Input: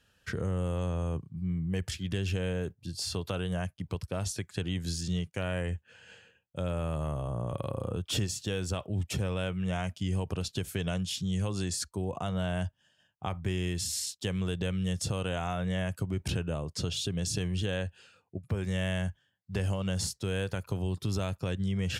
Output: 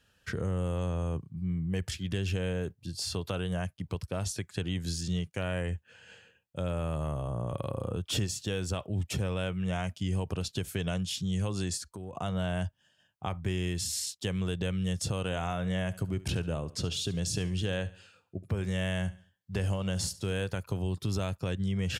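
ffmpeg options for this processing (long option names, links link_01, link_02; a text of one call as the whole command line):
ffmpeg -i in.wav -filter_complex "[0:a]asettb=1/sr,asplit=3[link_01][link_02][link_03];[link_01]atrim=end=11.774[link_04];[link_02]atrim=start=11.77:end=12.17,asetpts=PTS-STARTPTS,afade=type=in:duration=0.004:curve=qsin,afade=type=out:start_time=0.396:duration=0.004:curve=qsin,acompressor=threshold=-37dB:ratio=6:attack=3.2:release=140:knee=1:detection=peak[link_05];[link_03]atrim=start=12.166[link_06];[link_04][link_05]acrossfade=duration=0.004:curve1=hsin:curve2=qsin[link_07];[link_07][link_06]acrossfade=duration=0.004:curve1=qsin:curve2=hsin,asplit=3[link_08][link_09][link_10];[link_08]afade=type=out:start_time=15.25:duration=0.02[link_11];[link_09]aecho=1:1:71|142|213:0.126|0.0491|0.0191,afade=type=in:start_time=15.25:duration=0.02,afade=type=out:start_time=20.45:duration=0.02[link_12];[link_10]afade=type=in:start_time=20.45:duration=0.02[link_13];[link_11][link_12][link_13]amix=inputs=3:normalize=0" out.wav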